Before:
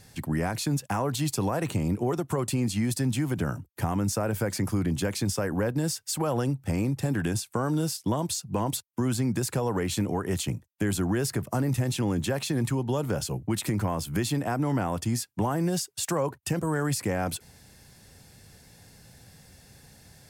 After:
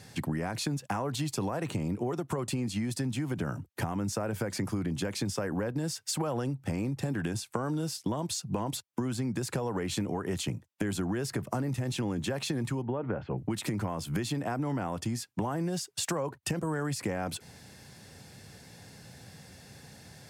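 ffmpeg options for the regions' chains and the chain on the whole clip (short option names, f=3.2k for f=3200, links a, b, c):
-filter_complex "[0:a]asettb=1/sr,asplit=3[a][b][c];[a]atrim=end=12.824[d];[b]atrim=start=12.82:end=13.38,asetpts=PTS-STARTPTS,afade=t=in:d=0.004:c=qsin,afade=t=out:st=0.556:d=0.004:c=qsin,lowpass=f=2.2k:w=0.5412,lowpass=f=2.2k:w=1.3066,equalizer=f=150:w=7.8:g=-8[e];[c]atrim=start=13.376[f];[d][e]acrossfade=d=0.004:c1=hsin:c2=qsin[g];[g][f]acrossfade=d=0.004:c1=qsin:c2=hsin,highpass=96,highshelf=f=10k:g=-11,acompressor=threshold=-33dB:ratio=6,volume=4dB"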